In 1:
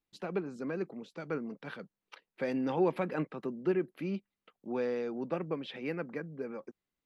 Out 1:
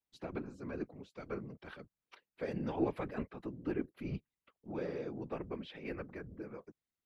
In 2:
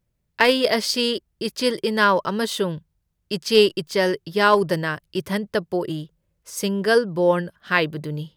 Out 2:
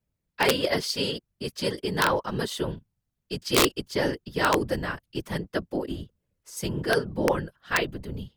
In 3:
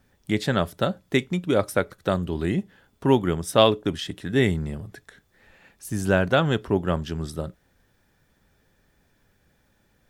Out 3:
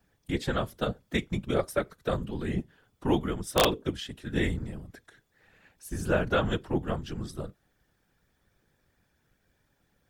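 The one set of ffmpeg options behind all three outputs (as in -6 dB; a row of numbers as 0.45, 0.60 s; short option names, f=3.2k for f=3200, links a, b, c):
-af "afreqshift=-33,afftfilt=real='hypot(re,im)*cos(2*PI*random(0))':imag='hypot(re,im)*sin(2*PI*random(1))':win_size=512:overlap=0.75,aeval=exprs='(mod(3.98*val(0)+1,2)-1)/3.98':c=same"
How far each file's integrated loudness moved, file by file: -6.0, -6.0, -6.5 LU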